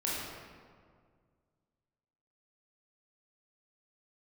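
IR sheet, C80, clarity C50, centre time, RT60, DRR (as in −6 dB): 0.5 dB, −2.0 dB, 114 ms, 1.9 s, −7.0 dB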